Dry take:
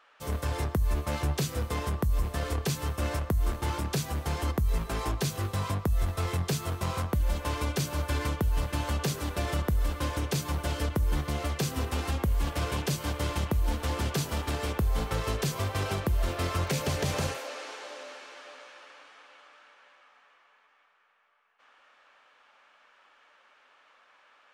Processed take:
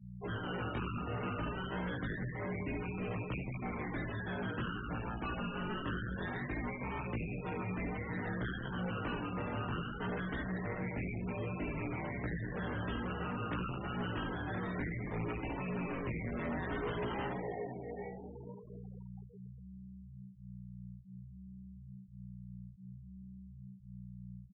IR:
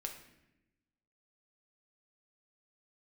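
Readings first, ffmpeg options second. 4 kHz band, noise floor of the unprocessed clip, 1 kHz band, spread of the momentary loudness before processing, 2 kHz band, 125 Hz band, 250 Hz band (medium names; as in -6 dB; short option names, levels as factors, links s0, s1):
-13.0 dB, -63 dBFS, -6.5 dB, 3 LU, -3.0 dB, -10.0 dB, -3.0 dB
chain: -filter_complex "[0:a]aemphasis=mode=reproduction:type=riaa,acrusher=samples=24:mix=1:aa=0.000001:lfo=1:lforange=14.4:lforate=0.24,asplit=2[s0][s1];[s1]adelay=72,lowpass=f=2500:p=1,volume=0.631,asplit=2[s2][s3];[s3]adelay=72,lowpass=f=2500:p=1,volume=0.27,asplit=2[s4][s5];[s5]adelay=72,lowpass=f=2500:p=1,volume=0.27,asplit=2[s6][s7];[s7]adelay=72,lowpass=f=2500:p=1,volume=0.27[s8];[s2][s4][s6][s8]amix=inputs=4:normalize=0[s9];[s0][s9]amix=inputs=2:normalize=0,asoftclip=type=tanh:threshold=0.178,aeval=exprs='val(0)+0.02*(sin(2*PI*60*n/s)+sin(2*PI*2*60*n/s)/2+sin(2*PI*3*60*n/s)/3+sin(2*PI*4*60*n/s)/4+sin(2*PI*5*60*n/s)/5)':c=same,flanger=delay=16:depth=7.5:speed=0.58,highpass=f=240:t=q:w=0.5412,highpass=f=240:t=q:w=1.307,lowpass=f=3500:t=q:w=0.5176,lowpass=f=3500:t=q:w=0.7071,lowpass=f=3500:t=q:w=1.932,afreqshift=-110,asplit=2[s10][s11];[s11]adelay=17,volume=0.631[s12];[s10][s12]amix=inputs=2:normalize=0,asoftclip=type=hard:threshold=0.0251,afftfilt=real='re*gte(hypot(re,im),0.0126)':imag='im*gte(hypot(re,im),0.0126)':win_size=1024:overlap=0.75,volume=0.841"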